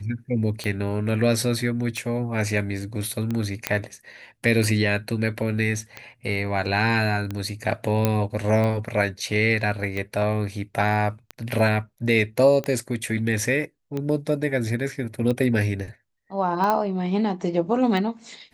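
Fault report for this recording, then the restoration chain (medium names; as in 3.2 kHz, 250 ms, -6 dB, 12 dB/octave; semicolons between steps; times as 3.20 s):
tick 45 rpm -16 dBFS
3.67 s: pop -5 dBFS
8.05 s: pop -6 dBFS
16.70 s: pop -10 dBFS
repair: de-click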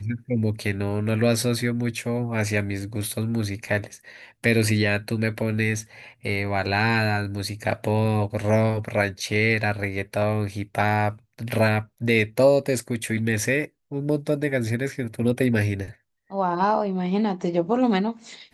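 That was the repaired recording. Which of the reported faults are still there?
nothing left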